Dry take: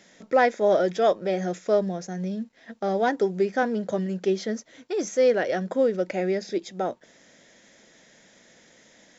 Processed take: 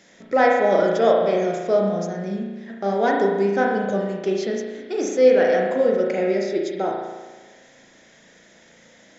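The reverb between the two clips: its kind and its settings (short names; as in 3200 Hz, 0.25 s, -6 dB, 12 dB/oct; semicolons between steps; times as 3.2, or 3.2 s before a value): spring tank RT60 1.3 s, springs 35 ms, chirp 35 ms, DRR -1 dB; gain +1 dB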